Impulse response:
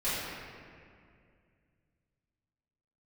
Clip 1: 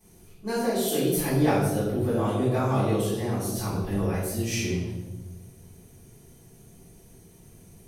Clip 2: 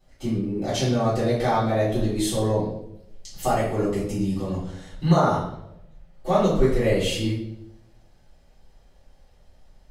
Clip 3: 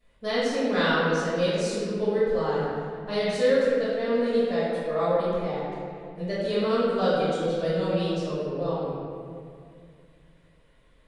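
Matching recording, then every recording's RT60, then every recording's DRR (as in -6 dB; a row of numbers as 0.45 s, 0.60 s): 3; 1.3 s, 0.80 s, 2.2 s; -15.5 dB, -11.5 dB, -14.5 dB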